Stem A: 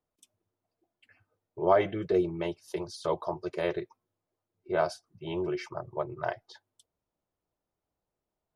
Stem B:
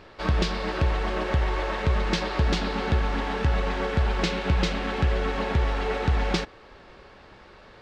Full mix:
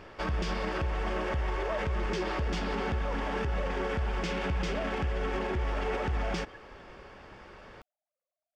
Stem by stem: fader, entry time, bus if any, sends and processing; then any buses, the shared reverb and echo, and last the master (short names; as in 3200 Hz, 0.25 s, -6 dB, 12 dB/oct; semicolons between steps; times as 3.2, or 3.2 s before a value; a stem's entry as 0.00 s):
+3.0 dB, 0.00 s, no send, sine-wave speech; compressor 2:1, threshold -38 dBFS, peak gain reduction 11.5 dB
0.0 dB, 0.00 s, no send, bell 4000 Hz -12 dB 0.21 oct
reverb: off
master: limiter -23.5 dBFS, peak gain reduction 12 dB